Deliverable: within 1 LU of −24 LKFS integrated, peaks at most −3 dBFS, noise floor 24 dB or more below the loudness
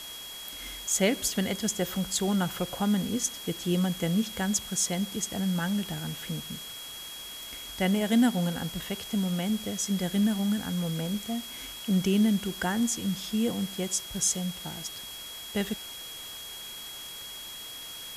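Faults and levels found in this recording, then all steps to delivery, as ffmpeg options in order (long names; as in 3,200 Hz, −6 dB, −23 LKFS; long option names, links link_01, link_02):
interfering tone 3,300 Hz; level of the tone −41 dBFS; background noise floor −42 dBFS; target noise floor −54 dBFS; integrated loudness −29.5 LKFS; sample peak −12.5 dBFS; target loudness −24.0 LKFS
→ -af "bandreject=frequency=3300:width=30"
-af "afftdn=noise_reduction=12:noise_floor=-42"
-af "volume=5.5dB"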